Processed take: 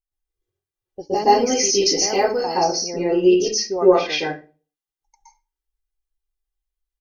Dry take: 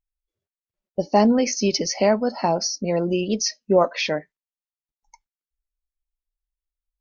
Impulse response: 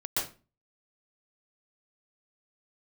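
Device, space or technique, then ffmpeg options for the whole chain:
microphone above a desk: -filter_complex "[0:a]aecho=1:1:2.5:0.67[s0];[1:a]atrim=start_sample=2205[s1];[s0][s1]afir=irnorm=-1:irlink=0,asettb=1/sr,asplit=3[s2][s3][s4];[s2]atrim=end=1.134[s5];[s3]atrim=start=1.13:end=2.64,asetpts=PTS-STARTPTS,afade=t=in:d=0.004:c=qsin,afade=t=out:st=1.506:d=0.004:c=qsin,aemphasis=mode=production:type=50fm[s6];[s4]atrim=start=2.636[s7];[s5][s6]acrossfade=d=0.004:c1=hsin:c2=qsin[s8];[s8][s7]acrossfade=d=0.004:c1=qsin:c2=hsin,volume=0.531"

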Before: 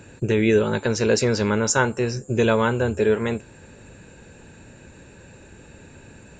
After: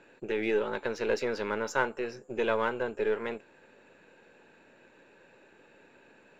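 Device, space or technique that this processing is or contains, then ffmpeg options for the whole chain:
crystal radio: -af "highpass=370,lowpass=3200,aeval=exprs='if(lt(val(0),0),0.708*val(0),val(0))':c=same,volume=0.501"

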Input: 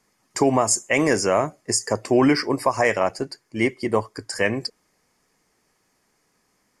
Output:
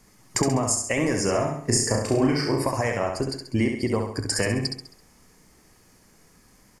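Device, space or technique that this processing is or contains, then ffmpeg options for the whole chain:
ASMR close-microphone chain: -filter_complex "[0:a]lowshelf=f=160:g=4,acompressor=threshold=0.0282:ratio=5,lowshelf=f=190:g=10.5,highshelf=f=7500:g=6,bandreject=f=71.78:t=h:w=4,bandreject=f=143.56:t=h:w=4,bandreject=f=215.34:t=h:w=4,bandreject=f=287.12:t=h:w=4,bandreject=f=358.9:t=h:w=4,bandreject=f=430.68:t=h:w=4,bandreject=f=502.46:t=h:w=4,bandreject=f=574.24:t=h:w=4,bandreject=f=646.02:t=h:w=4,bandreject=f=717.8:t=h:w=4,bandreject=f=789.58:t=h:w=4,bandreject=f=861.36:t=h:w=4,bandreject=f=933.14:t=h:w=4,bandreject=f=1004.92:t=h:w=4,bandreject=f=1076.7:t=h:w=4,bandreject=f=1148.48:t=h:w=4,bandreject=f=1220.26:t=h:w=4,bandreject=f=1292.04:t=h:w=4,bandreject=f=1363.82:t=h:w=4,bandreject=f=1435.6:t=h:w=4,bandreject=f=1507.38:t=h:w=4,bandreject=f=1579.16:t=h:w=4,bandreject=f=1650.94:t=h:w=4,bandreject=f=1722.72:t=h:w=4,bandreject=f=1794.5:t=h:w=4,bandreject=f=1866.28:t=h:w=4,bandreject=f=1938.06:t=h:w=4,bandreject=f=2009.84:t=h:w=4,bandreject=f=2081.62:t=h:w=4,bandreject=f=2153.4:t=h:w=4,bandreject=f=2225.18:t=h:w=4,bandreject=f=2296.96:t=h:w=4,bandreject=f=2368.74:t=h:w=4,asettb=1/sr,asplit=3[s0][s1][s2];[s0]atrim=end=1.254[s3];[s1]atrim=start=1.25:end=2.62,asetpts=PTS-STARTPTS,afade=t=in:d=0.004:c=qsin,afade=t=out:st=1.366:d=0.004:c=qsin,asplit=2[s4][s5];[s5]adelay=35,volume=0.668[s6];[s4][s6]amix=inputs=2:normalize=0,atrim=end_sample=60417[s7];[s2]atrim=start=2.616[s8];[s3][s7]acrossfade=d=0.004:c1=hsin:c2=qsin[s9];[s9][s8]acrossfade=d=0.004:c1=qsin:c2=hsin,aecho=1:1:67|134|201|268|335:0.562|0.247|0.109|0.0479|0.0211,volume=2"

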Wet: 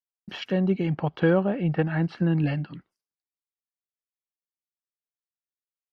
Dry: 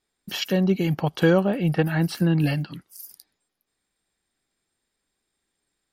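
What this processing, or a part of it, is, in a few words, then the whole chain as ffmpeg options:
hearing-loss simulation: -filter_complex "[0:a]asettb=1/sr,asplit=3[s0][s1][s2];[s0]atrim=end=0.904[s3];[s1]atrim=start=0.9:end=2.37,asetpts=PTS-STARTPTS,afade=t=in:d=0.004:c=qsin,afade=t=out:st=1.466:d=0.004:c=qsin,lowpass=5800[s4];[s2]atrim=start=2.366[s5];[s3][s4]acrossfade=d=0.004:c1=hsin:c2=qsin[s6];[s6][s5]acrossfade=d=0.004:c1=qsin:c2=hsin,lowpass=2500,agate=range=0.0224:threshold=0.00501:ratio=3:detection=peak,volume=0.75"

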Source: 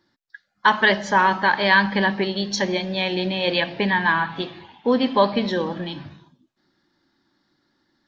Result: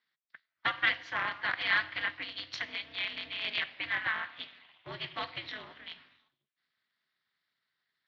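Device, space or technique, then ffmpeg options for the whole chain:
ring modulator pedal into a guitar cabinet: -af "aderivative,aeval=exprs='val(0)*sgn(sin(2*PI*110*n/s))':c=same,highpass=95,equalizer=f=140:t=q:w=4:g=4,equalizer=f=210:t=q:w=4:g=-4,equalizer=f=450:t=q:w=4:g=-9,equalizer=f=830:t=q:w=4:g=-5,equalizer=f=2000:t=q:w=4:g=5,lowpass=f=3400:w=0.5412,lowpass=f=3400:w=1.3066"

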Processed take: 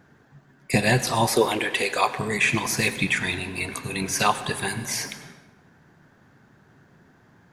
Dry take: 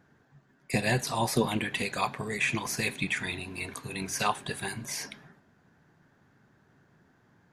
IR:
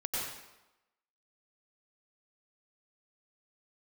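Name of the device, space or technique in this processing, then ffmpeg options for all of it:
saturated reverb return: -filter_complex "[0:a]asettb=1/sr,asplit=3[s0][s1][s2];[s0]atrim=end=1.274[s3];[s1]atrim=start=1.27:end=2.17,asetpts=PTS-STARTPTS,afade=t=in:d=0.004:c=qsin,afade=t=out:st=0.896:d=0.004:c=qsin,lowshelf=f=270:t=q:w=1.5:g=-11[s4];[s2]atrim=start=2.166[s5];[s3][s4]acrossfade=d=0.004:c1=hsin:c2=qsin[s6];[s6][s5]acrossfade=d=0.004:c1=qsin:c2=hsin,asplit=2[s7][s8];[1:a]atrim=start_sample=2205[s9];[s8][s9]afir=irnorm=-1:irlink=0,asoftclip=type=tanh:threshold=0.0631,volume=0.211[s10];[s7][s10]amix=inputs=2:normalize=0,volume=2"

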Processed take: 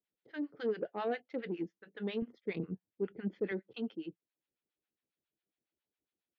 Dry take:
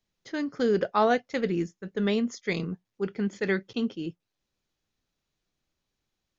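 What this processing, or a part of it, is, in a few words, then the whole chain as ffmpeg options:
guitar amplifier with harmonic tremolo: -filter_complex "[0:a]acrossover=split=740[s0][s1];[s0]aeval=exprs='val(0)*(1-1/2+1/2*cos(2*PI*7.3*n/s))':c=same[s2];[s1]aeval=exprs='val(0)*(1-1/2-1/2*cos(2*PI*7.3*n/s))':c=same[s3];[s2][s3]amix=inputs=2:normalize=0,asoftclip=type=tanh:threshold=0.0794,highpass=110,equalizer=f=110:t=q:w=4:g=-8,equalizer=f=160:t=q:w=4:g=-4,equalizer=f=320:t=q:w=4:g=5,equalizer=f=460:t=q:w=4:g=4,equalizer=f=1100:t=q:w=4:g=-5,lowpass=f=3600:w=0.5412,lowpass=f=3600:w=1.3066,asettb=1/sr,asplit=3[s4][s5][s6];[s4]atrim=end=2.224[s7];[s5]atrim=start=2.22:end=3.52,asetpts=PTS-STARTPTS,afade=t=in:d=0.004:c=qsin,afade=t=out:st=1.296:d=0.004:c=qsin,aemphasis=mode=reproduction:type=bsi[s8];[s6]atrim=start=3.516[s9];[s7][s8]acrossfade=d=0.004:c1=hsin:c2=qsin[s10];[s10][s9]acrossfade=d=0.004:c1=qsin:c2=hsin,volume=0.473"

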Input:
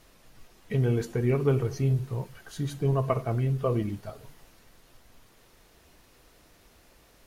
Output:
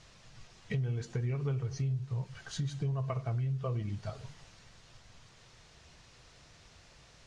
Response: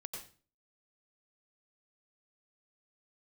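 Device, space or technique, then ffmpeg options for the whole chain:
jukebox: -af "lowpass=5800,aemphasis=mode=production:type=bsi,lowshelf=f=190:t=q:w=1.5:g=12.5,acompressor=threshold=0.0251:ratio=5,lowpass=f=7700:w=0.5412,lowpass=f=7700:w=1.3066"

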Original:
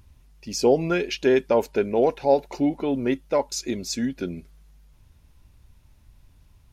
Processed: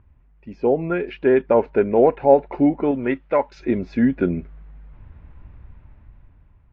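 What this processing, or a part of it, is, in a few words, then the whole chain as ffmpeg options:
action camera in a waterproof case: -filter_complex "[0:a]asettb=1/sr,asplit=3[s0][s1][s2];[s0]atrim=end=2.914[s3];[s1]atrim=start=2.91:end=3.6,asetpts=PTS-STARTPTS,afade=t=in:d=0.004:c=qsin,afade=t=out:st=0.686:d=0.004:c=qsin,tiltshelf=f=1100:g=-5.5[s4];[s2]atrim=start=3.596[s5];[s3][s4]acrossfade=d=0.004:c1=hsin:c2=qsin[s6];[s6][s5]acrossfade=d=0.004:c1=qsin:c2=hsin,lowpass=f=2100:w=0.5412,lowpass=f=2100:w=1.3066,dynaudnorm=f=290:g=9:m=5.31,volume=0.891" -ar 22050 -c:a aac -b:a 48k

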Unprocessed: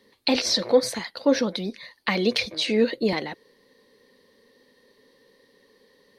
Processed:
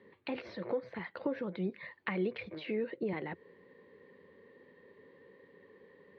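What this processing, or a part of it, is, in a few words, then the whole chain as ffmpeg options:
bass amplifier: -af "acompressor=threshold=0.0178:ratio=4,highpass=76,equalizer=f=89:t=q:w=4:g=8,equalizer=f=170:t=q:w=4:g=7,equalizer=f=240:t=q:w=4:g=-4,equalizer=f=370:t=q:w=4:g=5,equalizer=f=710:t=q:w=4:g=-3,lowpass=f=2400:w=0.5412,lowpass=f=2400:w=1.3066"

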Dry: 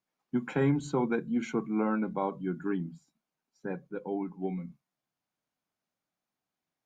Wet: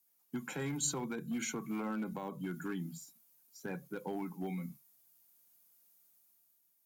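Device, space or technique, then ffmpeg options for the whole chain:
FM broadcast chain: -filter_complex "[0:a]highpass=48,dynaudnorm=f=150:g=9:m=2.11,acrossover=split=180|870[s0][s1][s2];[s0]acompressor=threshold=0.0126:ratio=4[s3];[s1]acompressor=threshold=0.0178:ratio=4[s4];[s2]acompressor=threshold=0.01:ratio=4[s5];[s3][s4][s5]amix=inputs=3:normalize=0,aemphasis=mode=production:type=50fm,alimiter=level_in=1.19:limit=0.0631:level=0:latency=1:release=37,volume=0.841,asoftclip=type=hard:threshold=0.0422,lowpass=f=15000:w=0.5412,lowpass=f=15000:w=1.3066,aemphasis=mode=production:type=50fm,volume=0.631"

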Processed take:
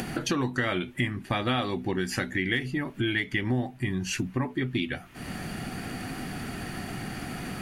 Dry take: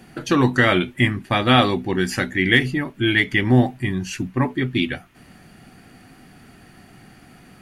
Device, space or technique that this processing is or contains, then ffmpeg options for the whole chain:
upward and downward compression: -af "acompressor=mode=upward:threshold=0.0891:ratio=2.5,acompressor=threshold=0.0631:ratio=4,volume=0.841"

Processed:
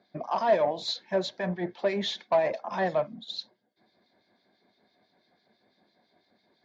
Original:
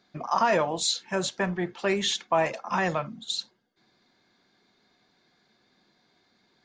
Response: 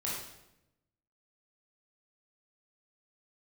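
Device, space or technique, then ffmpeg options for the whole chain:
guitar amplifier with harmonic tremolo: -filter_complex "[0:a]acrossover=split=2200[s0][s1];[s0]aeval=exprs='val(0)*(1-0.7/2+0.7/2*cos(2*PI*6*n/s))':c=same[s2];[s1]aeval=exprs='val(0)*(1-0.7/2-0.7/2*cos(2*PI*6*n/s))':c=same[s3];[s2][s3]amix=inputs=2:normalize=0,asoftclip=type=tanh:threshold=0.075,highpass=81,equalizer=f=140:t=q:w=4:g=-6,equalizer=f=620:t=q:w=4:g=8,equalizer=f=1300:t=q:w=4:g=-9,equalizer=f=2800:t=q:w=4:g=-10,lowpass=f=4500:w=0.5412,lowpass=f=4500:w=1.3066,volume=1.33"

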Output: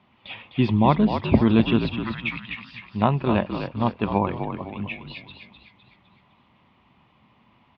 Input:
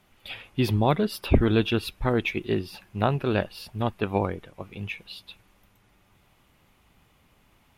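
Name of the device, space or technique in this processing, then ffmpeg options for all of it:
frequency-shifting delay pedal into a guitar cabinet: -filter_complex "[0:a]asettb=1/sr,asplit=3[s0][s1][s2];[s0]atrim=end=1.964[s3];[s1]atrim=start=1.96:end=2.82,asetpts=PTS-STARTPTS,afade=t=in:d=0.004:c=qsin,afade=t=out:st=0.856:d=0.004:c=qsin,highpass=f=1400:w=0.5412,highpass=f=1400:w=1.3066[s4];[s2]atrim=start=2.816[s5];[s3][s4]acrossfade=d=0.004:c1=hsin:c2=qsin[s6];[s6][s5]acrossfade=d=0.004:c1=qsin:c2=hsin,asplit=6[s7][s8][s9][s10][s11][s12];[s8]adelay=254,afreqshift=-56,volume=0.447[s13];[s9]adelay=508,afreqshift=-112,volume=0.207[s14];[s10]adelay=762,afreqshift=-168,volume=0.0944[s15];[s11]adelay=1016,afreqshift=-224,volume=0.0437[s16];[s12]adelay=1270,afreqshift=-280,volume=0.02[s17];[s7][s13][s14][s15][s16][s17]amix=inputs=6:normalize=0,highpass=90,equalizer=f=130:t=q:w=4:g=3,equalizer=f=220:t=q:w=4:g=7,equalizer=f=450:t=q:w=4:g=-4,equalizer=f=1000:t=q:w=4:g=8,equalizer=f=1500:t=q:w=4:g=-6,lowpass=f=3600:w=0.5412,lowpass=f=3600:w=1.3066,volume=1.19"

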